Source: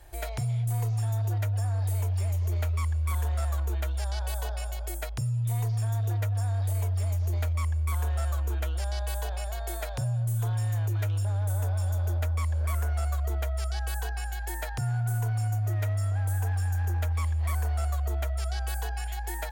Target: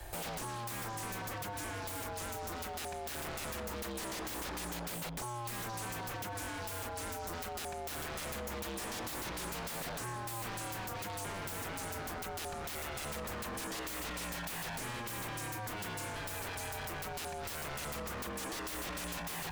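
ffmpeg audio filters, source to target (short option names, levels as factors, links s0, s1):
-filter_complex "[0:a]aeval=exprs='0.0106*(abs(mod(val(0)/0.0106+3,4)-2)-1)':c=same,acrossover=split=130|290|4300[s0][s1][s2][s3];[s0]acompressor=threshold=0.00178:ratio=4[s4];[s1]acompressor=threshold=0.00141:ratio=4[s5];[s2]acompressor=threshold=0.00398:ratio=4[s6];[s3]acompressor=threshold=0.00316:ratio=4[s7];[s4][s5][s6][s7]amix=inputs=4:normalize=0,volume=2.37"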